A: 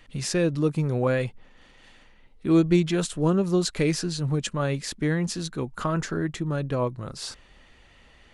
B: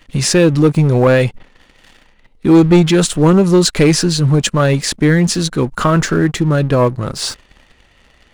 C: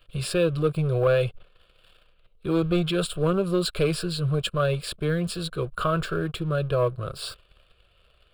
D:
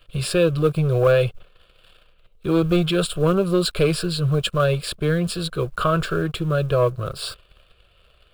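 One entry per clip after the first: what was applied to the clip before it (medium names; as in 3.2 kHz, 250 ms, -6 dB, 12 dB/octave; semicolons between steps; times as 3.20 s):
waveshaping leveller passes 2; trim +7 dB
static phaser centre 1.3 kHz, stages 8; trim -8.5 dB
block-companded coder 7-bit; trim +4.5 dB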